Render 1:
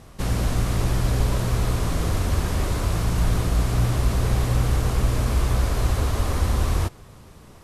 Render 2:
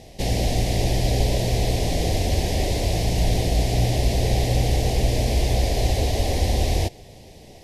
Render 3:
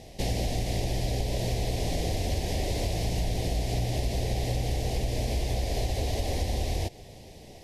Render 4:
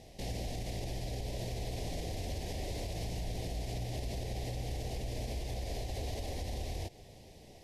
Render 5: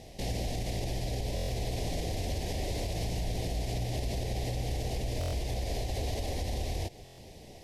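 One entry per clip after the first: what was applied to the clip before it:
EQ curve 190 Hz 0 dB, 750 Hz +8 dB, 1300 Hz -25 dB, 1900 Hz +3 dB, 5100 Hz +8 dB, 8100 Hz +1 dB
compressor, threshold -22 dBFS, peak gain reduction 8 dB; gain -2.5 dB
limiter -22.5 dBFS, peak gain reduction 5.5 dB; gain -7 dB
stuck buffer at 1.35/5.19/7.04, samples 1024, times 5; gain +5 dB

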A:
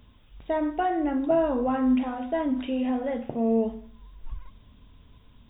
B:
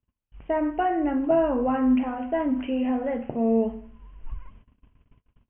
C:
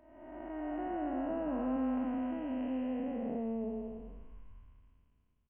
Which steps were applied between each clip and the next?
steep low-pass 3000 Hz 96 dB/oct; gate -49 dBFS, range -34 dB; gain +1.5 dB
time blur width 0.636 s; doubler 23 ms -12.5 dB; gain -8.5 dB

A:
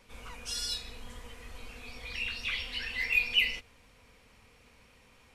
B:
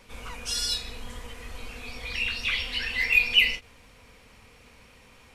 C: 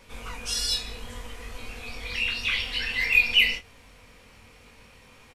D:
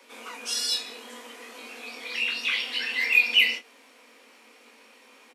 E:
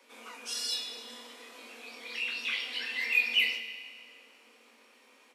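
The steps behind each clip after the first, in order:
ending taper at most 290 dB/s; gain +6.5 dB
doubler 22 ms -5 dB
steep high-pass 230 Hz 96 dB/oct
reverb RT60 2.0 s, pre-delay 17 ms, DRR 8 dB; gain -7 dB

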